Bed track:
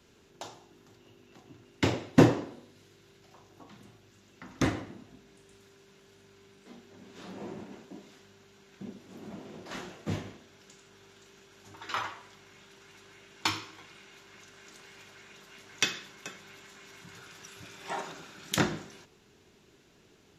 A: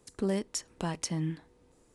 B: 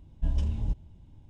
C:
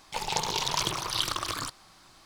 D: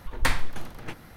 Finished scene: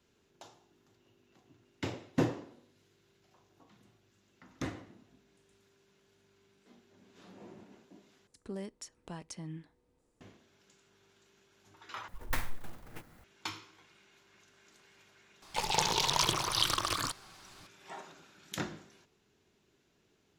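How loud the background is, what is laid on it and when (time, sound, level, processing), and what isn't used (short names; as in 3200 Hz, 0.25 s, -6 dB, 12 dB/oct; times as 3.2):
bed track -10.5 dB
8.27 replace with A -11 dB + high shelf 9800 Hz -4.5 dB
12.08 replace with D -10.5 dB + clock jitter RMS 0.043 ms
15.42 add C -0.5 dB
not used: B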